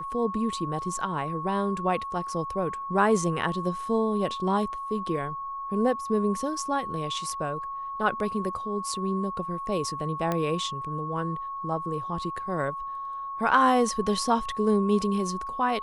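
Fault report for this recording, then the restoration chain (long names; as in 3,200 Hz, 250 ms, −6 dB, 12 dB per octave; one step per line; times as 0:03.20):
whistle 1,100 Hz −32 dBFS
0:10.32: click −14 dBFS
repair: click removal
notch filter 1,100 Hz, Q 30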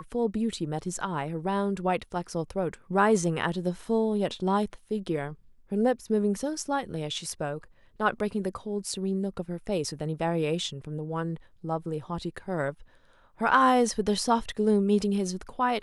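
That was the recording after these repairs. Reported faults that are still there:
0:10.32: click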